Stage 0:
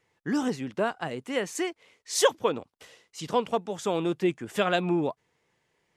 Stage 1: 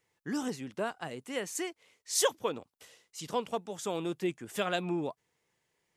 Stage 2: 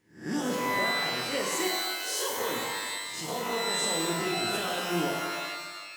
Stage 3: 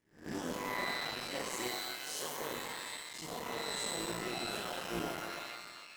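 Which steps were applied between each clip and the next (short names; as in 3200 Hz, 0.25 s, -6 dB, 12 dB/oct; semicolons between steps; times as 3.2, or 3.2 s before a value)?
high shelf 6200 Hz +11 dB; gain -7 dB
spectral swells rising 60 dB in 0.39 s; limiter -25 dBFS, peak gain reduction 11.5 dB; shimmer reverb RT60 1.4 s, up +12 st, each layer -2 dB, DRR -1 dB
cycle switcher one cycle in 3, muted; gain -7.5 dB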